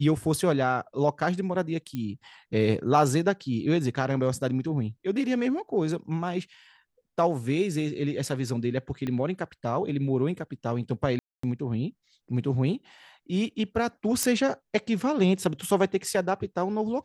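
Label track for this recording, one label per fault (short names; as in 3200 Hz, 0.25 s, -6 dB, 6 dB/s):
1.950000	1.950000	pop -20 dBFS
9.070000	9.070000	pop -20 dBFS
11.190000	11.430000	gap 0.244 s
14.230000	14.230000	pop -9 dBFS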